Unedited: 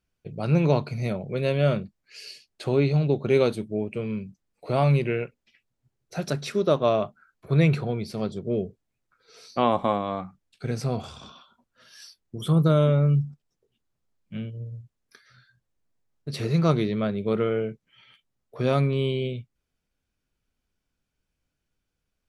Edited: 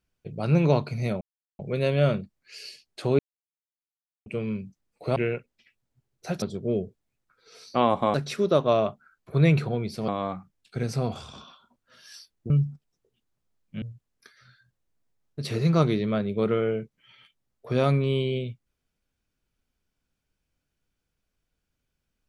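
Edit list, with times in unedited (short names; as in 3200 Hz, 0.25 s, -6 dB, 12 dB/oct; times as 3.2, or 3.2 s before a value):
1.21 insert silence 0.38 s
2.81–3.88 mute
4.78–5.04 cut
8.24–9.96 move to 6.3
12.38–13.08 cut
14.4–14.71 cut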